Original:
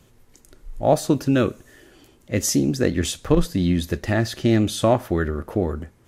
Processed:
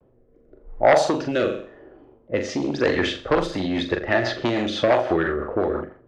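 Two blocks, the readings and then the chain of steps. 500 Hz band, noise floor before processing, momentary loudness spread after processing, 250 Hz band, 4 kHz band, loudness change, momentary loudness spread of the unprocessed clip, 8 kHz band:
+2.5 dB, -55 dBFS, 8 LU, -4.0 dB, +1.0 dB, -0.5 dB, 6 LU, -12.0 dB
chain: level-controlled noise filter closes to 470 Hz, open at -13 dBFS; treble shelf 4.6 kHz -6.5 dB; flutter echo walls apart 7.2 m, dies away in 0.4 s; vibrato 0.33 Hz 18 cents; sine folder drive 8 dB, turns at -2.5 dBFS; compression, threshold -8 dBFS, peak gain reduction 4 dB; three-band isolator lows -17 dB, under 410 Hz, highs -22 dB, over 7.1 kHz; rotary cabinet horn 0.9 Hz, later 6 Hz, at 2.83 s

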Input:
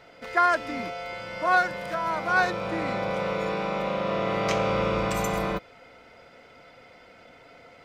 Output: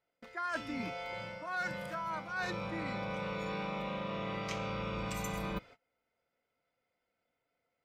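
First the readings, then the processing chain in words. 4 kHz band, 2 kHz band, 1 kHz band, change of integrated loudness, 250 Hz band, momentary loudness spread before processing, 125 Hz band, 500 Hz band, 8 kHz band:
-8.5 dB, -12.0 dB, -13.5 dB, -12.0 dB, -8.0 dB, 9 LU, -7.5 dB, -13.5 dB, -8.5 dB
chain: spectral noise reduction 7 dB; gate -48 dBFS, range -26 dB; dynamic bell 560 Hz, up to -7 dB, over -39 dBFS, Q 0.94; reverse; compression 10:1, threshold -34 dBFS, peak gain reduction 15 dB; reverse

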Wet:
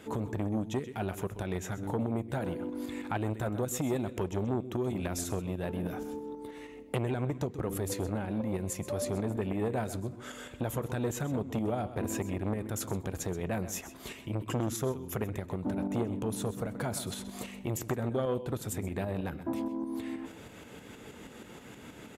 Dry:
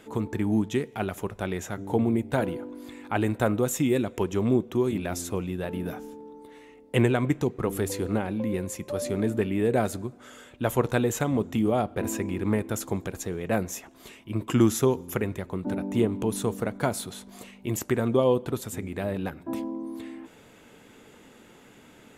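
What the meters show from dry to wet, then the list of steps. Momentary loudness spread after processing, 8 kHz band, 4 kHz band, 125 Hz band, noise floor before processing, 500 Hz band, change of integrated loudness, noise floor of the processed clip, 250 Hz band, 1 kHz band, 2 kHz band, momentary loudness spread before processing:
11 LU, -4.0 dB, -5.0 dB, -4.5 dB, -53 dBFS, -7.5 dB, -7.0 dB, -49 dBFS, -7.0 dB, -6.0 dB, -7.5 dB, 13 LU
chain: high-pass 49 Hz 12 dB/octave; bass shelf 110 Hz +8.5 dB; tremolo saw up 6.3 Hz, depth 50%; compression 2.5:1, threshold -36 dBFS, peak gain reduction 13 dB; on a send: delay 129 ms -14.5 dB; on the sum: transformer saturation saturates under 750 Hz; trim +5 dB

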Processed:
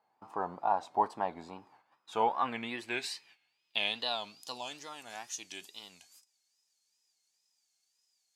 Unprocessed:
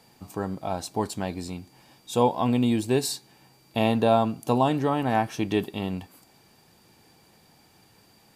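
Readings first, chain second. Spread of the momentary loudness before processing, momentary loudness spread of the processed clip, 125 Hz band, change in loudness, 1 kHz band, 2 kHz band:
13 LU, 16 LU, -26.0 dB, -9.5 dB, -5.5 dB, -3.0 dB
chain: gate -52 dBFS, range -14 dB; wow and flutter 140 cents; band-pass sweep 940 Hz -> 6.5 kHz, 1.55–4.99 s; trim +5 dB

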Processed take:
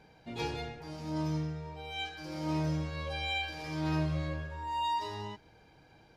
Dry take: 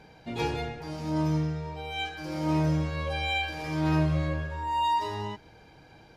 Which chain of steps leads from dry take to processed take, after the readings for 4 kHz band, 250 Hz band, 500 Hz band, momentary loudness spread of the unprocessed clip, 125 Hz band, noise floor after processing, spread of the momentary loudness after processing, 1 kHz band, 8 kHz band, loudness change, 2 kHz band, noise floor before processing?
-3.5 dB, -6.5 dB, -6.5 dB, 10 LU, -6.5 dB, -61 dBFS, 10 LU, -6.5 dB, no reading, -6.0 dB, -5.5 dB, -54 dBFS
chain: dynamic bell 4.6 kHz, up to +5 dB, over -50 dBFS, Q 1.1; trim -6.5 dB

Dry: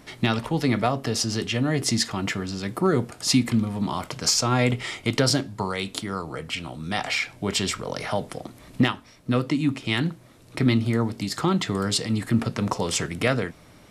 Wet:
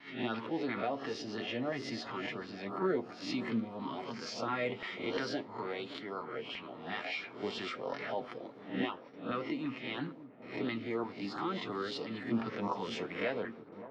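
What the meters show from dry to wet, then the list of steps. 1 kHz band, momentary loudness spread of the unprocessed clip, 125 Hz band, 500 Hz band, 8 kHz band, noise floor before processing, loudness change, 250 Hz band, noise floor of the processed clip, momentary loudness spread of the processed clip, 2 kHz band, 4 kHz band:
-9.5 dB, 9 LU, -21.5 dB, -9.0 dB, -28.0 dB, -51 dBFS, -13.0 dB, -13.0 dB, -51 dBFS, 6 LU, -10.5 dB, -15.5 dB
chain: reverse spectral sustain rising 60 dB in 0.39 s; high-pass 350 Hz 12 dB/octave; treble shelf 7.7 kHz -10 dB; in parallel at 0 dB: peak limiter -19.5 dBFS, peak gain reduction 11.5 dB; on the sum: short-mantissa float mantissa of 4-bit; flange 0.5 Hz, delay 6.9 ms, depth 4.5 ms, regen +41%; LFO notch saw up 2.9 Hz 450–2400 Hz; distance through air 270 m; gate with hold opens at -43 dBFS; on a send: feedback echo behind a low-pass 570 ms, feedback 72%, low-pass 980 Hz, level -14 dB; on the sum: trim -7.5 dB

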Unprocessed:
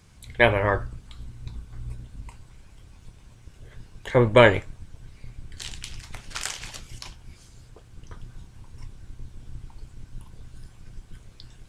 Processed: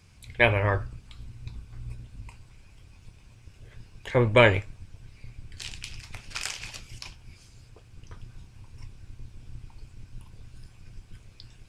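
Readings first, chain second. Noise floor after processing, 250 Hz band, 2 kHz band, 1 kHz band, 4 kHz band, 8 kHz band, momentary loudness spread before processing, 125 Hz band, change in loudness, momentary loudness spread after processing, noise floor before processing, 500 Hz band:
-54 dBFS, -4.0 dB, -1.5 dB, -4.0 dB, -1.5 dB, -3.0 dB, 25 LU, -0.5 dB, -3.0 dB, 24 LU, -51 dBFS, -4.0 dB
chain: graphic EQ with 31 bands 100 Hz +7 dB, 2.5 kHz +8 dB, 5 kHz +5 dB; trim -4 dB

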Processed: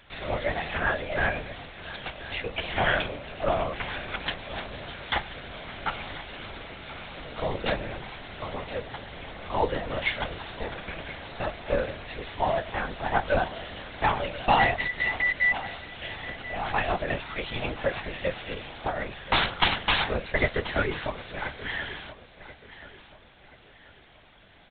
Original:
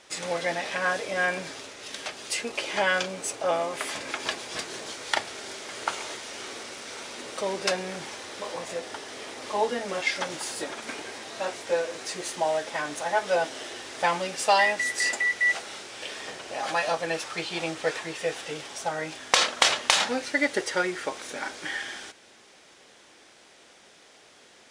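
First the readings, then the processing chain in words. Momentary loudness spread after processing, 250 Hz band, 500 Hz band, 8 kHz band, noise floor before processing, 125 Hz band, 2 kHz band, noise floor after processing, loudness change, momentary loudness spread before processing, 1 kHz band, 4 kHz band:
15 LU, +0.5 dB, -1.5 dB, under -40 dB, -55 dBFS, +10.5 dB, -0.5 dB, -54 dBFS, -1.0 dB, 14 LU, +0.5 dB, -3.0 dB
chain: frequency shift +19 Hz; LPC vocoder at 8 kHz whisper; feedback delay 1032 ms, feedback 38%, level -16 dB

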